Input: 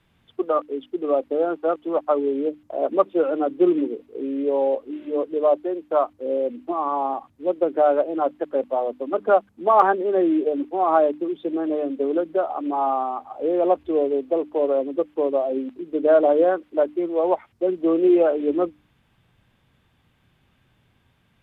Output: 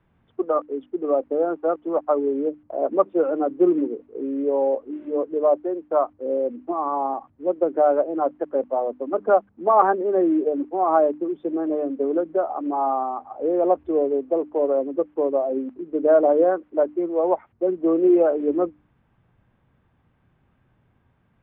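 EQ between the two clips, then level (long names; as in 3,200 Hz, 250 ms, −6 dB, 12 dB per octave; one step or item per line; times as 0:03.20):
low-pass filter 1,500 Hz 12 dB per octave
0.0 dB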